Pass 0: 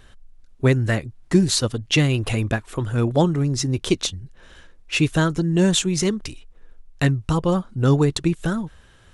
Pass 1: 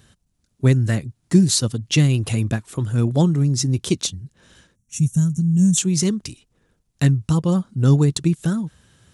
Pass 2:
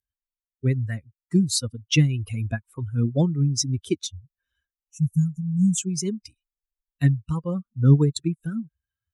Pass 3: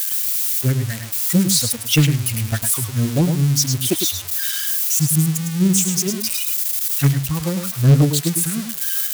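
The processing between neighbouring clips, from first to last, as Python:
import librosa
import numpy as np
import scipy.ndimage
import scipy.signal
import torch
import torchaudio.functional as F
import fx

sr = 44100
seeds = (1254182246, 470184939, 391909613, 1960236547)

y1 = fx.spec_box(x, sr, start_s=4.75, length_s=1.03, low_hz=250.0, high_hz=5500.0, gain_db=-19)
y1 = scipy.signal.sosfilt(scipy.signal.butter(2, 140.0, 'highpass', fs=sr, output='sos'), y1)
y1 = fx.bass_treble(y1, sr, bass_db=14, treble_db=10)
y1 = y1 * librosa.db_to_amplitude(-5.5)
y2 = fx.bin_expand(y1, sr, power=2.0)
y2 = fx.rider(y2, sr, range_db=10, speed_s=2.0)
y2 = fx.rotary_switch(y2, sr, hz=5.0, then_hz=1.1, switch_at_s=1.25)
y3 = y2 + 0.5 * 10.0 ** (-16.0 / 20.0) * np.diff(np.sign(y2), prepend=np.sign(y2[:1]))
y3 = y3 + 10.0 ** (-7.0 / 20.0) * np.pad(y3, (int(105 * sr / 1000.0), 0))[:len(y3)]
y3 = fx.doppler_dist(y3, sr, depth_ms=0.73)
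y3 = y3 * librosa.db_to_amplitude(3.5)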